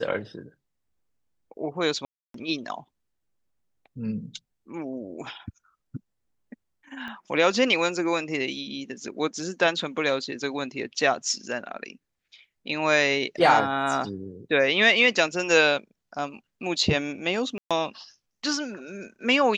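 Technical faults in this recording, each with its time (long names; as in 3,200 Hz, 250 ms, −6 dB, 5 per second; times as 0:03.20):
0:02.05–0:02.34: drop-out 293 ms
0:07.08: click −26 dBFS
0:17.58–0:17.71: drop-out 126 ms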